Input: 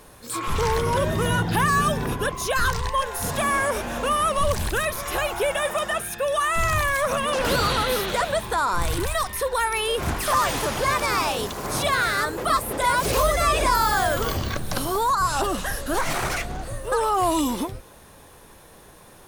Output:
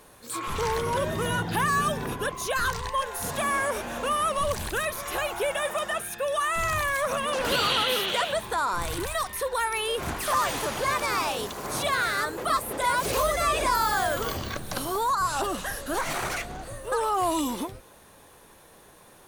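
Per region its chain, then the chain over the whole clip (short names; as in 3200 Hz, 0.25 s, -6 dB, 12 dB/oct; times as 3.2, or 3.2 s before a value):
7.52–8.33 HPF 130 Hz 6 dB/oct + bell 3000 Hz +12 dB 0.49 oct
whole clip: low shelf 140 Hz -7 dB; notch 5200 Hz, Q 24; gain -3.5 dB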